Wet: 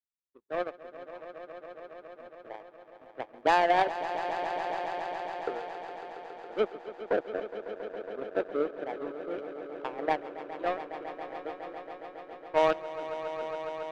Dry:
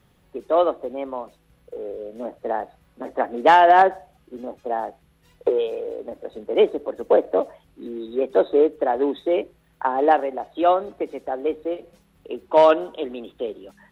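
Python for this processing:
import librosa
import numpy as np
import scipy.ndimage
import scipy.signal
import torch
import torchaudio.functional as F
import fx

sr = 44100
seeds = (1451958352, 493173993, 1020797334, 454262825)

y = fx.high_shelf(x, sr, hz=2300.0, db=-5.0)
y = fx.power_curve(y, sr, exponent=2.0)
y = fx.echo_swell(y, sr, ms=138, loudest=5, wet_db=-14.0)
y = y * 10.0 ** (-7.0 / 20.0)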